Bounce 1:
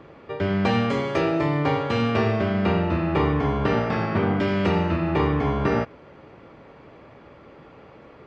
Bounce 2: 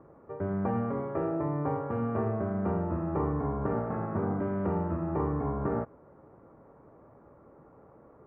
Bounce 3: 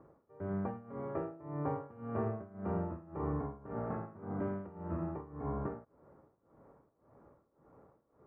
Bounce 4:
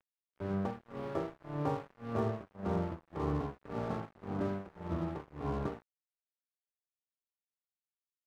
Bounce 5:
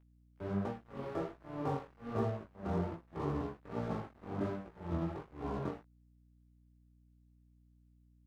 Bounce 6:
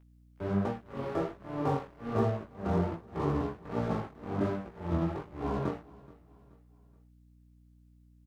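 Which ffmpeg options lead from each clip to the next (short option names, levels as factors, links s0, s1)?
-af "lowpass=f=1300:w=0.5412,lowpass=f=1300:w=1.3066,volume=0.398"
-af "tremolo=f=1.8:d=0.89,volume=0.596"
-af "aeval=exprs='sgn(val(0))*max(abs(val(0))-0.00355,0)':c=same,volume=1.5"
-af "flanger=delay=16.5:depth=7.8:speed=1.3,aeval=exprs='val(0)+0.000562*(sin(2*PI*60*n/s)+sin(2*PI*2*60*n/s)/2+sin(2*PI*3*60*n/s)/3+sin(2*PI*4*60*n/s)/4+sin(2*PI*5*60*n/s)/5)':c=same,volume=1.12"
-af "aecho=1:1:427|854|1281:0.0794|0.0334|0.014,volume=2"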